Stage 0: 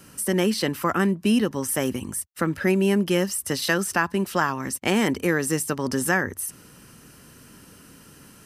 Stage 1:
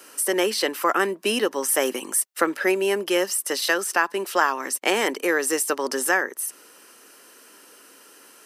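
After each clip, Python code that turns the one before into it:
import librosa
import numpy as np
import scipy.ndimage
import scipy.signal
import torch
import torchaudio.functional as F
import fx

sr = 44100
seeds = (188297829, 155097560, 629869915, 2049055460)

y = scipy.signal.sosfilt(scipy.signal.butter(4, 360.0, 'highpass', fs=sr, output='sos'), x)
y = fx.rider(y, sr, range_db=10, speed_s=0.5)
y = F.gain(torch.from_numpy(y), 3.5).numpy()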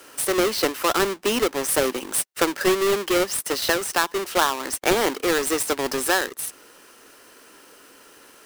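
y = fx.halfwave_hold(x, sr)
y = F.gain(torch.from_numpy(y), -3.5).numpy()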